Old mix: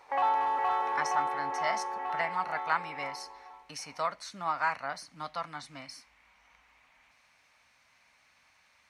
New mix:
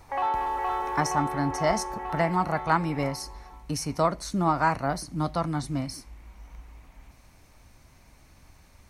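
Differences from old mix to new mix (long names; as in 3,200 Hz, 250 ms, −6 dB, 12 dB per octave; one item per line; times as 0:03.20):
speech: remove resonant band-pass 2,300 Hz, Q 0.91
master: add parametric band 350 Hz +12 dB 0.29 octaves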